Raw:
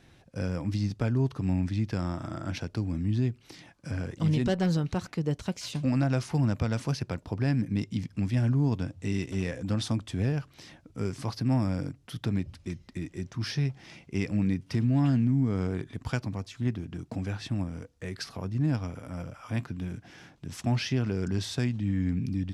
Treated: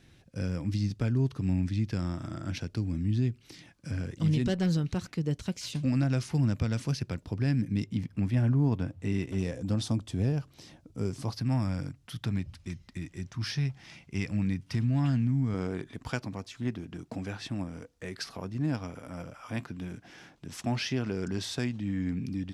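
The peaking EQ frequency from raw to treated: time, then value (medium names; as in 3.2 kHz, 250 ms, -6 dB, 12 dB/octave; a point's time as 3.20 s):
peaking EQ -7 dB 1.7 oct
820 Hz
from 7.86 s 6 kHz
from 9.38 s 1.8 kHz
from 11.35 s 400 Hz
from 15.54 s 93 Hz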